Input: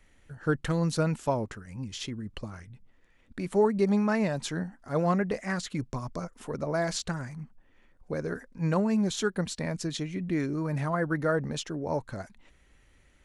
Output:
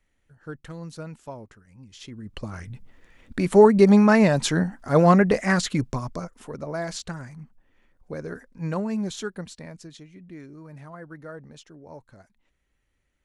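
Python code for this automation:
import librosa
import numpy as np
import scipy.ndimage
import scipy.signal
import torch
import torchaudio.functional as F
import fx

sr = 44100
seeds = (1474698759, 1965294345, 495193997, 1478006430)

y = fx.gain(x, sr, db=fx.line((1.87, -10.5), (2.14, -3.0), (2.68, 10.0), (5.63, 10.0), (6.52, -1.5), (9.07, -1.5), (10.07, -13.0)))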